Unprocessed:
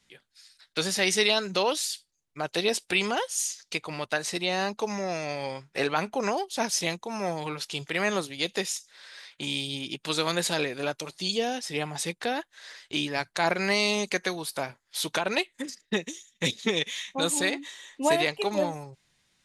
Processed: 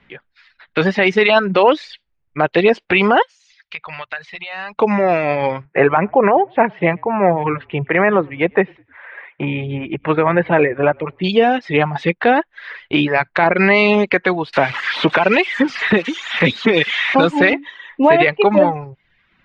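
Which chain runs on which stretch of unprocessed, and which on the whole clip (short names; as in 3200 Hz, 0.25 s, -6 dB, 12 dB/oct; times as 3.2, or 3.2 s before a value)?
3.22–4.79 passive tone stack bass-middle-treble 10-0-10 + compressor 4:1, threshold -37 dBFS + notches 60/120/180 Hz
5.65–11.24 speaker cabinet 110–2200 Hz, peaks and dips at 130 Hz +4 dB, 250 Hz -6 dB, 1400 Hz -4 dB + frequency-shifting echo 0.102 s, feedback 34%, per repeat -37 Hz, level -21 dB
14.53–17.53 switching spikes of -18.5 dBFS + three-band squash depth 70%
whole clip: LPF 2500 Hz 24 dB/oct; reverb removal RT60 0.66 s; maximiser +18.5 dB; gain -1 dB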